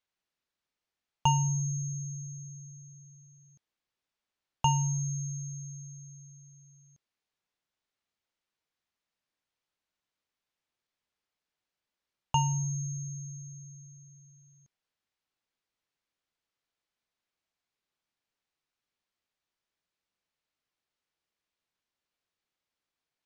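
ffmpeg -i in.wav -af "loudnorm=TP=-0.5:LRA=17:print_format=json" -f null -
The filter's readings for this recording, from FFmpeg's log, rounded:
"input_i" : "-31.9",
"input_tp" : "-12.0",
"input_lra" : "12.9",
"input_thresh" : "-44.6",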